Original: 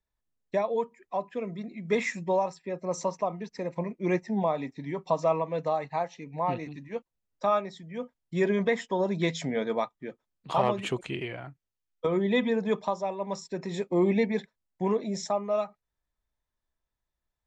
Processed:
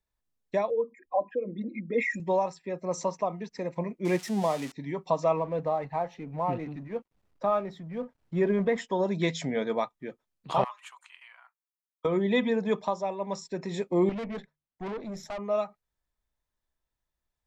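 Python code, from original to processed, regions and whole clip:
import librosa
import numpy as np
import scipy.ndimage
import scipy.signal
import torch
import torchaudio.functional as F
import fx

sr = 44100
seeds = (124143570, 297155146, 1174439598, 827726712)

y = fx.chain(x, sr, fx.envelope_sharpen(power=2.0),
    fx.comb(ms=3.7, depth=0.97), at=(0.7, 2.2))
y = fx.chain(y, sr, fx.crossing_spikes(level_db=-24.5),
    fx.air_absorb(metres=60.0), at=(4.05, 4.72))
y = fx.chain(y, sr, fx.law_mismatch(coded='mu'),
    fx.lowpass(hz=1200.0, slope=6), at=(5.37, 8.78))
y = fx.chain(y, sr, fx.ellip_highpass(hz=1000.0, order=4, stop_db=70),
    fx.peak_eq(hz=3300.0, db=-13.5, octaves=2.7), at=(10.64, 12.05))
y = fx.chain(y, sr, fx.high_shelf(hz=4000.0, db=-10.5),
    fx.hum_notches(base_hz=50, count=3),
    fx.tube_stage(drive_db=32.0, bias=0.6), at=(14.09, 15.39))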